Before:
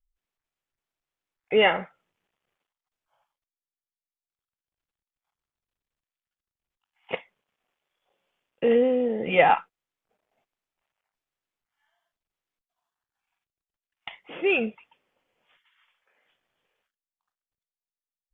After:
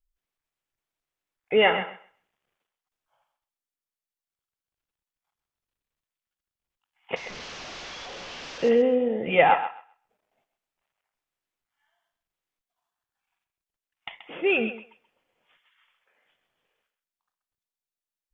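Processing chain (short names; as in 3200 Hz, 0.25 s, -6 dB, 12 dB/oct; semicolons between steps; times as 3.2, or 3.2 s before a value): 7.16–8.69 delta modulation 32 kbps, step -33.5 dBFS; on a send: thinning echo 0.13 s, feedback 18%, high-pass 400 Hz, level -10 dB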